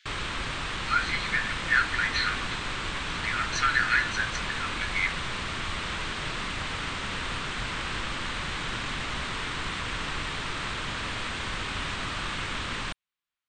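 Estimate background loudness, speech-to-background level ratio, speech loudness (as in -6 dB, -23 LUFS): -31.5 LUFS, 3.5 dB, -28.0 LUFS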